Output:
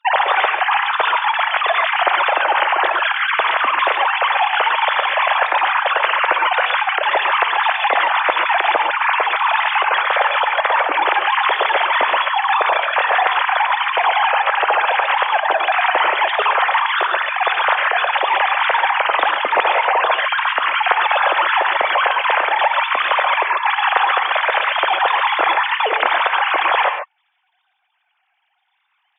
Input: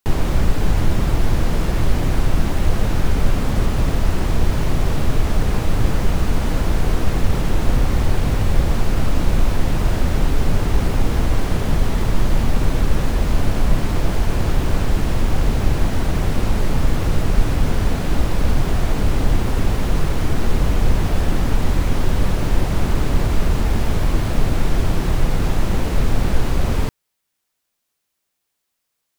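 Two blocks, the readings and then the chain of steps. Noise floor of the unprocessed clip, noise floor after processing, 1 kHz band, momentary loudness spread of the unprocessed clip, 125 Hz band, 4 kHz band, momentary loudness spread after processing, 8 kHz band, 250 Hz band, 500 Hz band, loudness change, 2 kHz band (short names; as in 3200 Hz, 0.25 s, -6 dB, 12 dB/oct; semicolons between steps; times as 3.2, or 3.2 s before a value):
-76 dBFS, -67 dBFS, +16.5 dB, 1 LU, under -40 dB, +11.5 dB, 1 LU, under -40 dB, under -15 dB, +4.5 dB, +5.5 dB, +16.5 dB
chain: sine-wave speech; HPF 620 Hz 24 dB/oct; in parallel at +1.5 dB: limiter -7.5 dBFS, peak gain reduction 10 dB; on the sum: non-linear reverb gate 0.16 s rising, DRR 5.5 dB; gain -8 dB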